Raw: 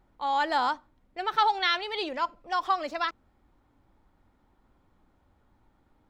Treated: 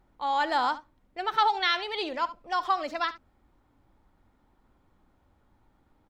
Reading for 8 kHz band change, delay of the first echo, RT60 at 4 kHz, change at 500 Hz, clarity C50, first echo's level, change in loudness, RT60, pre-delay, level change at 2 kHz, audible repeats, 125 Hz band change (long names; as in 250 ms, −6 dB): can't be measured, 71 ms, no reverb audible, 0.0 dB, no reverb audible, −16.0 dB, 0.0 dB, no reverb audible, no reverb audible, 0.0 dB, 1, can't be measured